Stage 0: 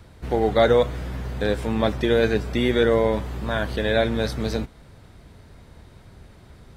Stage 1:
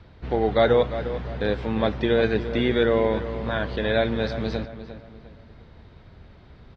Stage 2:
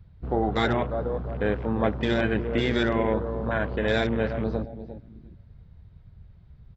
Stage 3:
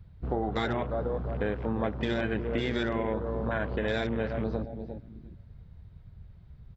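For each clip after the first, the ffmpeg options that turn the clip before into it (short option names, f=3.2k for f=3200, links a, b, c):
-filter_complex "[0:a]lowpass=f=4.5k:w=0.5412,lowpass=f=4.5k:w=1.3066,asplit=2[a][b];[b]adelay=351,lowpass=f=2.9k:p=1,volume=-11.5dB,asplit=2[c][d];[d]adelay=351,lowpass=f=2.9k:p=1,volume=0.38,asplit=2[e][f];[f]adelay=351,lowpass=f=2.9k:p=1,volume=0.38,asplit=2[g][h];[h]adelay=351,lowpass=f=2.9k:p=1,volume=0.38[i];[c][e][g][i]amix=inputs=4:normalize=0[j];[a][j]amix=inputs=2:normalize=0,volume=-1.5dB"
-af "afftfilt=real='re*lt(hypot(re,im),0.708)':imag='im*lt(hypot(re,im),0.708)':win_size=1024:overlap=0.75,afwtdn=0.0158"
-af "acompressor=threshold=-27dB:ratio=3"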